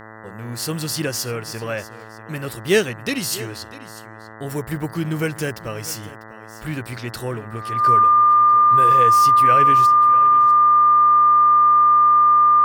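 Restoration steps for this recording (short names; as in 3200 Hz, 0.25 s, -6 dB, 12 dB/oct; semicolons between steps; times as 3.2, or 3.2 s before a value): de-hum 109.8 Hz, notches 18; notch 1200 Hz, Q 30; inverse comb 0.646 s -17.5 dB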